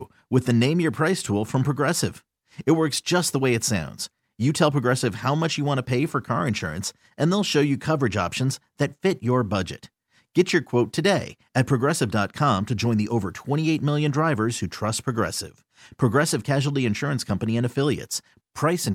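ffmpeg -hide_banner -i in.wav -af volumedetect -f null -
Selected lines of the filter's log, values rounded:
mean_volume: -23.4 dB
max_volume: -5.4 dB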